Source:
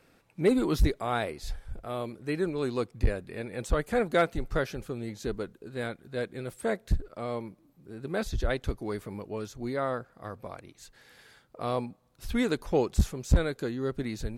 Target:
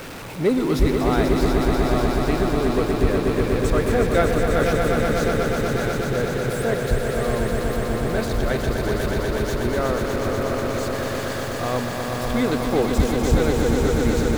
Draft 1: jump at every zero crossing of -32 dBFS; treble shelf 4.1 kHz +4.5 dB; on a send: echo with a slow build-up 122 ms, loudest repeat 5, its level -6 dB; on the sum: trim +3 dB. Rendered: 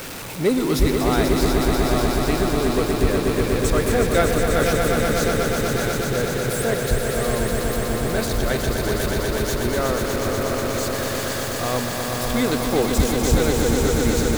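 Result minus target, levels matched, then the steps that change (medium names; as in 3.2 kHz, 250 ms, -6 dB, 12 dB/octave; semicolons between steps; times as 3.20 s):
8 kHz band +7.0 dB
change: treble shelf 4.1 kHz -5.5 dB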